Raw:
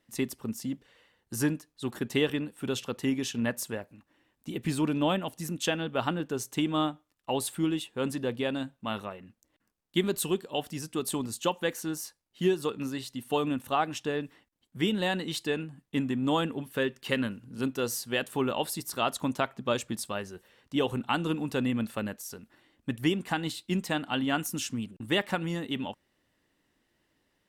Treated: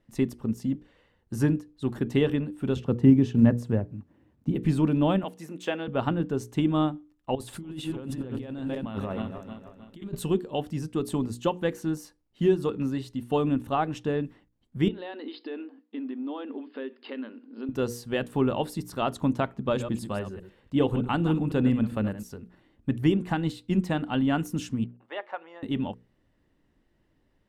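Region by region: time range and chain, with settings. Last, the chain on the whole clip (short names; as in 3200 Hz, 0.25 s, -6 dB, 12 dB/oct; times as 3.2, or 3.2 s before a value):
2.76–4.55 HPF 77 Hz 24 dB/oct + tilt -3 dB/oct + companded quantiser 8-bit
5.23–5.88 de-esser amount 75% + HPF 380 Hz + bell 2200 Hz +3 dB 0.39 oct
7.35–10.15 regenerating reverse delay 0.156 s, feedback 63%, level -12.5 dB + negative-ratio compressor -39 dBFS
14.88–17.69 compressor 5:1, threshold -35 dBFS + brick-wall FIR band-pass 230–5200 Hz
19.58–22.23 reverse delay 0.102 s, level -10 dB + notch 5800 Hz, Q 7.4
24.84–25.63 HPF 600 Hz 24 dB/oct + tape spacing loss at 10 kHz 34 dB
whole clip: tilt -3 dB/oct; notches 60/120/180/240/300/360/420/480 Hz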